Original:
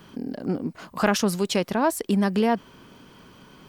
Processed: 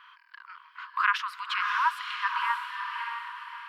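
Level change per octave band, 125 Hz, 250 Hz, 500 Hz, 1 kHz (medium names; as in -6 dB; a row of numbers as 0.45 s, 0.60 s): under -40 dB, under -40 dB, under -40 dB, +1.5 dB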